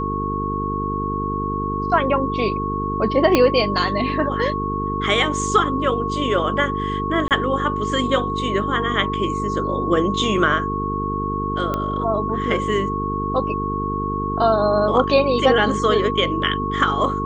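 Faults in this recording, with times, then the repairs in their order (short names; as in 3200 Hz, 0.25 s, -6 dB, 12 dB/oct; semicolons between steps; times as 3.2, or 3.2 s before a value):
buzz 50 Hz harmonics 9 -26 dBFS
tone 1100 Hz -24 dBFS
3.35 pop -2 dBFS
7.28–7.31 gap 28 ms
11.74 pop -11 dBFS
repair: de-click; de-hum 50 Hz, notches 9; notch 1100 Hz, Q 30; interpolate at 7.28, 28 ms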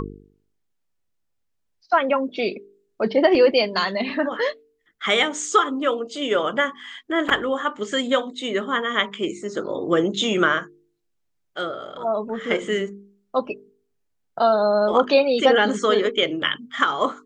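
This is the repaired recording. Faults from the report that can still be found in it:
3.35 pop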